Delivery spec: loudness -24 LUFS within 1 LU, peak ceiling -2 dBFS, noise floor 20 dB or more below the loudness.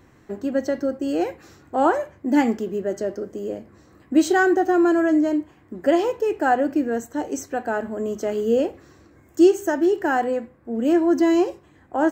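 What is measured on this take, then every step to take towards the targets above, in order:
loudness -22.0 LUFS; peak -5.5 dBFS; loudness target -24.0 LUFS
-> gain -2 dB

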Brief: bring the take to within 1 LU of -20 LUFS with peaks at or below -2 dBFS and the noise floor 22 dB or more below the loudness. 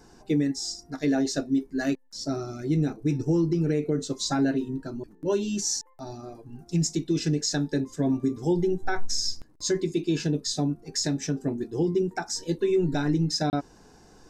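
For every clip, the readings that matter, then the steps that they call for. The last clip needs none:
dropouts 1; longest dropout 29 ms; loudness -27.5 LUFS; peak -16.0 dBFS; loudness target -20.0 LUFS
-> interpolate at 13.5, 29 ms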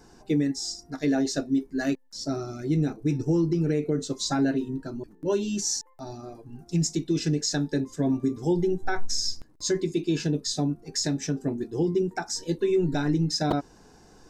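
dropouts 0; loudness -27.5 LUFS; peak -11.5 dBFS; loudness target -20.0 LUFS
-> gain +7.5 dB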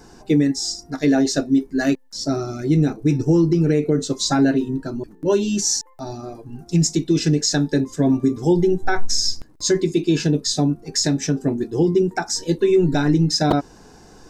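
loudness -20.0 LUFS; peak -4.0 dBFS; noise floor -47 dBFS

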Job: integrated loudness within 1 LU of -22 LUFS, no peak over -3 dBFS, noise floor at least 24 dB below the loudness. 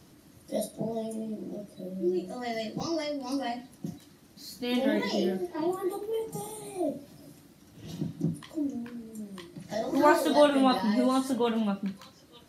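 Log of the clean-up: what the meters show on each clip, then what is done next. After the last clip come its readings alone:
dropouts 2; longest dropout 4.1 ms; loudness -29.5 LUFS; peak -9.0 dBFS; loudness target -22.0 LUFS
-> interpolate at 2.8/10.79, 4.1 ms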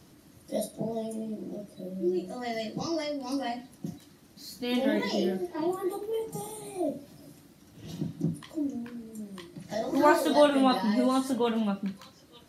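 dropouts 0; loudness -29.5 LUFS; peak -9.0 dBFS; loudness target -22.0 LUFS
-> gain +7.5 dB; limiter -3 dBFS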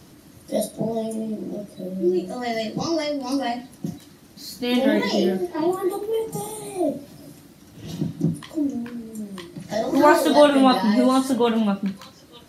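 loudness -22.5 LUFS; peak -3.0 dBFS; noise floor -49 dBFS

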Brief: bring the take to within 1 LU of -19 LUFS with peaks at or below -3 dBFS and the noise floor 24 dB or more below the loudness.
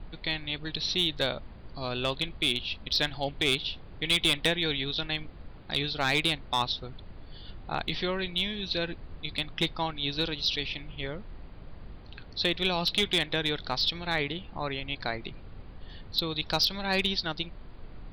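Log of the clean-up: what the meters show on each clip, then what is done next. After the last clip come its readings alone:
clipped 0.1%; flat tops at -17.5 dBFS; noise floor -47 dBFS; noise floor target -53 dBFS; loudness -29.0 LUFS; peak -17.5 dBFS; loudness target -19.0 LUFS
-> clip repair -17.5 dBFS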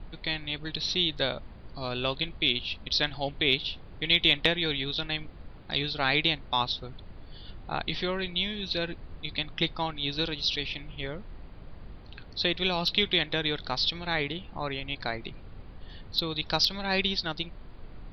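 clipped 0.0%; noise floor -47 dBFS; noise floor target -53 dBFS
-> noise print and reduce 6 dB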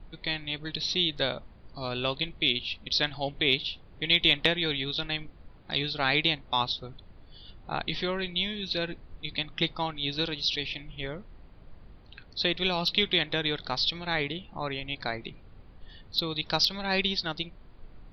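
noise floor -52 dBFS; noise floor target -53 dBFS
-> noise print and reduce 6 dB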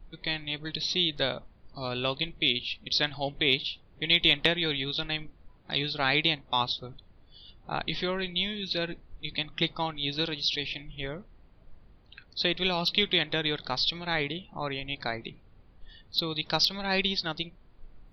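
noise floor -57 dBFS; loudness -28.5 LUFS; peak -8.5 dBFS; loudness target -19.0 LUFS
-> gain +9.5 dB; limiter -3 dBFS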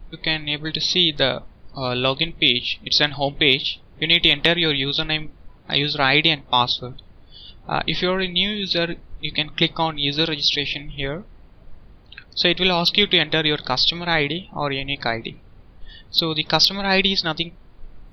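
loudness -19.5 LUFS; peak -3.0 dBFS; noise floor -48 dBFS

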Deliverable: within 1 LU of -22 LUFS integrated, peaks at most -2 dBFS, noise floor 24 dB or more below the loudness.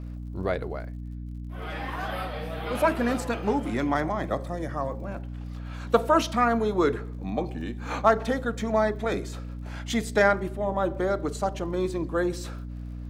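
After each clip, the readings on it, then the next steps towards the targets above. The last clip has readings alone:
ticks 55/s; hum 60 Hz; harmonics up to 300 Hz; hum level -33 dBFS; loudness -27.5 LUFS; peak -5.5 dBFS; loudness target -22.0 LUFS
-> de-click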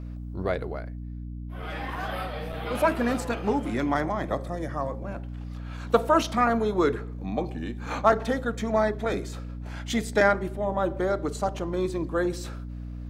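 ticks 0.23/s; hum 60 Hz; harmonics up to 300 Hz; hum level -34 dBFS
-> notches 60/120/180/240/300 Hz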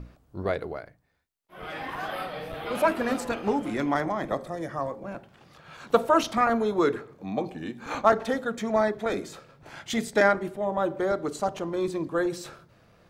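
hum none; loudness -27.5 LUFS; peak -5.5 dBFS; loudness target -22.0 LUFS
-> gain +5.5 dB; limiter -2 dBFS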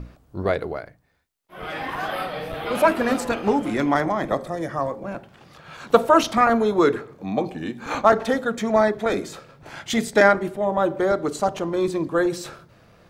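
loudness -22.0 LUFS; peak -2.0 dBFS; noise floor -56 dBFS

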